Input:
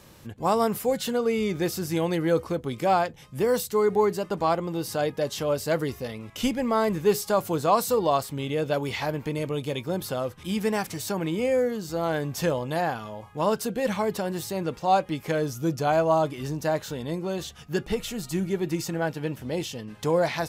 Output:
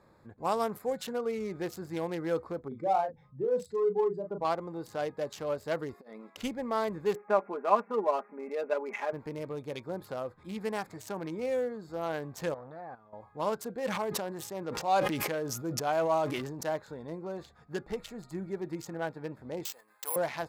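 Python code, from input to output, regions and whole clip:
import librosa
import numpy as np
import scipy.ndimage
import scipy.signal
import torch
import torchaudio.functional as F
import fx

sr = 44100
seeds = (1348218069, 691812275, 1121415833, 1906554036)

y = fx.chain(x, sr, fx.spec_expand(power=1.8),
    fx.lowpass(hz=7900.0, slope=12),
    fx.doubler(ms=36.0, db=-5.0), at=(2.68, 4.45))
y = fx.chain(y, sr, fx.brickwall_highpass(low_hz=170.0),
    fx.over_compress(threshold_db=-38.0, ratio=-0.5), at=(5.94, 6.37))
y = fx.chain(y, sr, fx.brickwall_bandpass(low_hz=190.0, high_hz=2700.0),
    fx.comb(ms=4.9, depth=0.7), at=(7.15, 9.13))
y = fx.chain(y, sr, fx.high_shelf(hz=4500.0, db=-10.5),
    fx.level_steps(step_db=17),
    fx.transformer_sat(knee_hz=600.0), at=(12.54, 13.13))
y = fx.chain(y, sr, fx.low_shelf(hz=71.0, db=-12.0),
    fx.sustainer(db_per_s=25.0), at=(13.76, 16.69))
y = fx.chain(y, sr, fx.highpass(hz=1000.0, slope=12),
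    fx.resample_bad(factor=4, down='none', up='zero_stuff'), at=(19.65, 20.16))
y = fx.wiener(y, sr, points=15)
y = fx.low_shelf(y, sr, hz=300.0, db=-9.5)
y = F.gain(torch.from_numpy(y), -4.5).numpy()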